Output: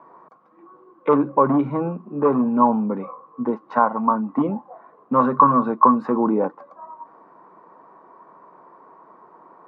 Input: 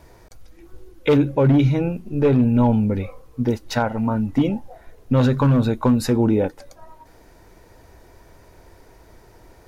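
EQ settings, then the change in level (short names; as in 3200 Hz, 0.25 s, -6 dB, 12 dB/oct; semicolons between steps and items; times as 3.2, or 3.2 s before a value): steep high-pass 160 Hz 48 dB/oct; synth low-pass 1100 Hz, resonance Q 13; -2.5 dB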